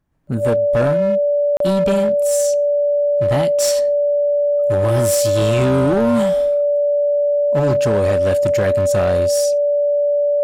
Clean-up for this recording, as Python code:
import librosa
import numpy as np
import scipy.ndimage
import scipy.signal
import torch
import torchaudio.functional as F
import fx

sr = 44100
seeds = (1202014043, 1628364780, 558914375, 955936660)

y = fx.fix_declip(x, sr, threshold_db=-11.5)
y = fx.notch(y, sr, hz=580.0, q=30.0)
y = fx.fix_interpolate(y, sr, at_s=(1.57,), length_ms=33.0)